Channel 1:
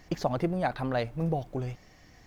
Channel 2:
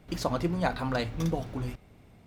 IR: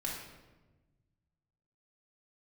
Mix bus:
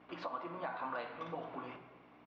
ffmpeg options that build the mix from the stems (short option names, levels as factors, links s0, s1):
-filter_complex "[0:a]bass=f=250:g=0,treble=f=4000:g=8,volume=0.2,asplit=2[s0][s1];[1:a]adelay=6.4,volume=0.944,asplit=2[s2][s3];[s3]volume=0.355[s4];[s1]apad=whole_len=100063[s5];[s2][s5]sidechaincompress=threshold=0.00316:ratio=8:attack=47:release=291[s6];[2:a]atrim=start_sample=2205[s7];[s4][s7]afir=irnorm=-1:irlink=0[s8];[s0][s6][s8]amix=inputs=3:normalize=0,aeval=exprs='val(0)+0.00631*(sin(2*PI*60*n/s)+sin(2*PI*2*60*n/s)/2+sin(2*PI*3*60*n/s)/3+sin(2*PI*4*60*n/s)/4+sin(2*PI*5*60*n/s)/5)':c=same,highpass=490,equalizer=f=530:t=q:w=4:g=-3,equalizer=f=1100:t=q:w=4:g=8,equalizer=f=1900:t=q:w=4:g=-4,lowpass=f=2900:w=0.5412,lowpass=f=2900:w=1.3066,alimiter=level_in=1.78:limit=0.0631:level=0:latency=1:release=366,volume=0.562"